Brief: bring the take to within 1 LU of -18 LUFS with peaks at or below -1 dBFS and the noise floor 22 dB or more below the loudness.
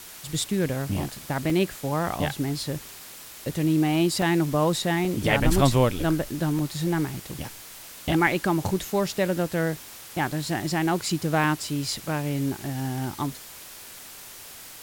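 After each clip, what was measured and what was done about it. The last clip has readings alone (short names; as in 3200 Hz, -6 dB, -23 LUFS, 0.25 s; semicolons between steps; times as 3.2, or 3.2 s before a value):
dropouts 8; longest dropout 1.6 ms; noise floor -43 dBFS; noise floor target -48 dBFS; loudness -25.5 LUFS; peak -6.0 dBFS; loudness target -18.0 LUFS
-> interpolate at 1.5/2.78/4.22/5.05/6.59/8.27/10.32/11.44, 1.6 ms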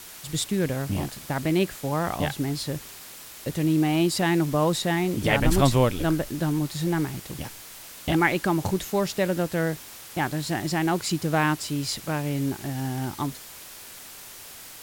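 dropouts 0; noise floor -43 dBFS; noise floor target -48 dBFS
-> denoiser 6 dB, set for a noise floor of -43 dBFS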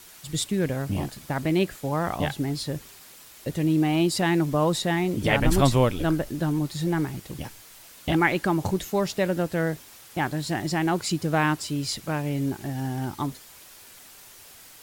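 noise floor -49 dBFS; loudness -26.0 LUFS; peak -6.5 dBFS; loudness target -18.0 LUFS
-> gain +8 dB; limiter -1 dBFS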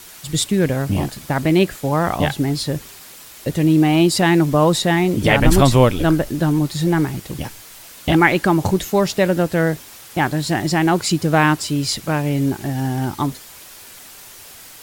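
loudness -18.0 LUFS; peak -1.0 dBFS; noise floor -41 dBFS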